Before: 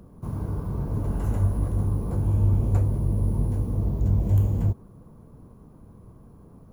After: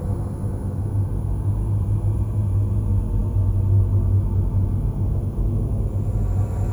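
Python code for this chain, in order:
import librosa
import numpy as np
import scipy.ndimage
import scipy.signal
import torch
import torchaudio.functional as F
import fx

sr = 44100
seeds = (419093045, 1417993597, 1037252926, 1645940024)

y = fx.paulstretch(x, sr, seeds[0], factor=11.0, window_s=0.25, from_s=2.13)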